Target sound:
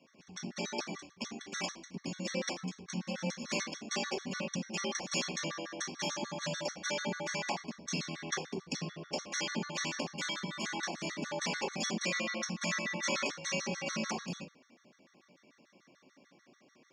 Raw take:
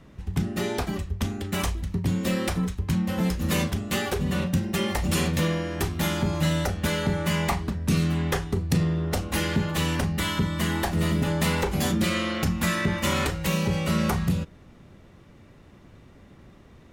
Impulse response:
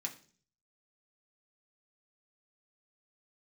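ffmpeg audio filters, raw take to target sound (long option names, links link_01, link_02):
-filter_complex "[0:a]highpass=400,equalizer=frequency=860:width_type=q:width=4:gain=-7,equalizer=frequency=1300:width_type=q:width=4:gain=-6,equalizer=frequency=2000:width_type=q:width=4:gain=-5,equalizer=frequency=3500:width_type=q:width=4:gain=-4,equalizer=frequency=5600:width_type=q:width=4:gain=10,lowpass=frequency=5900:width=0.5412,lowpass=frequency=5900:width=1.3066[link_01];[1:a]atrim=start_sample=2205,afade=type=out:start_time=0.18:duration=0.01,atrim=end_sample=8379[link_02];[link_01][link_02]afir=irnorm=-1:irlink=0,afftfilt=real='re*gt(sin(2*PI*6.8*pts/sr)*(1-2*mod(floor(b*sr/1024/1100),2)),0)':imag='im*gt(sin(2*PI*6.8*pts/sr)*(1-2*mod(floor(b*sr/1024/1100),2)),0)':win_size=1024:overlap=0.75"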